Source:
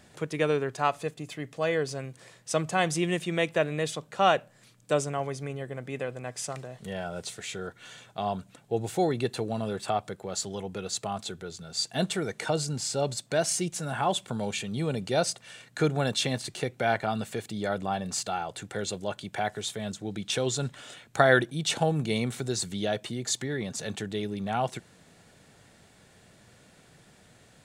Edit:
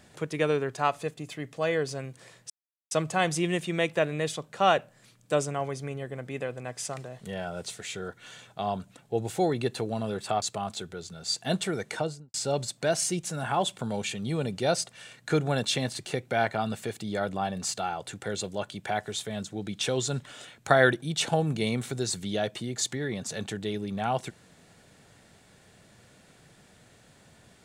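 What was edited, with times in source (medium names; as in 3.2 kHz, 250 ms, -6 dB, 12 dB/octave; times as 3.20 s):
2.50 s: insert silence 0.41 s
10.01–10.91 s: delete
12.38–12.83 s: studio fade out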